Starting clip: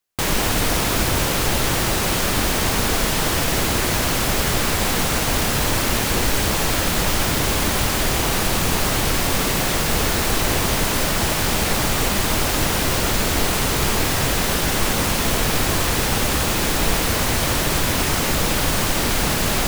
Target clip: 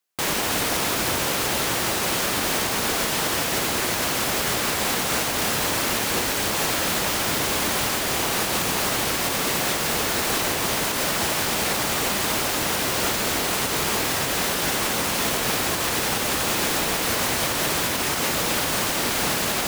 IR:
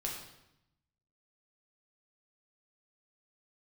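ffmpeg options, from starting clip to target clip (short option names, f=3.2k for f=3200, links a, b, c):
-af "highpass=f=270:p=1,alimiter=limit=-13dB:level=0:latency=1:release=135"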